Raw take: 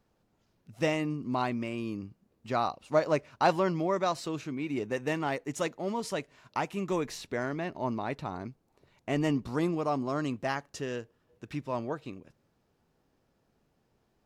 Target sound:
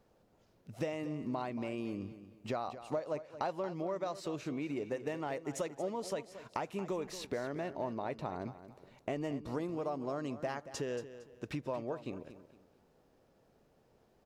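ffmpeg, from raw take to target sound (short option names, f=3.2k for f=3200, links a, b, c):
-af "equalizer=f=540:w=1.3:g=7,acompressor=threshold=-36dB:ratio=6,aecho=1:1:229|458|687:0.224|0.0672|0.0201,volume=1dB"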